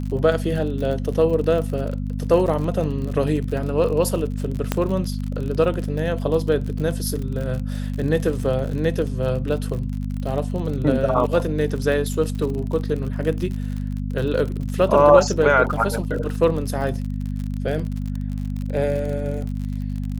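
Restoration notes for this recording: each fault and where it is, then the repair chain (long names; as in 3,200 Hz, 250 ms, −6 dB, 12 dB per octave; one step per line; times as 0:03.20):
surface crackle 53 per second −28 dBFS
mains hum 50 Hz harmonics 5 −26 dBFS
0:04.72: click −6 dBFS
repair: click removal
hum removal 50 Hz, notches 5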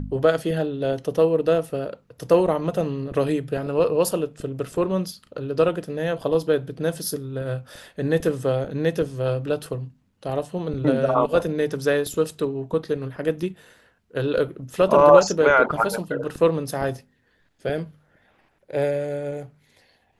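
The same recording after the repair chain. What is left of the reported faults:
none of them is left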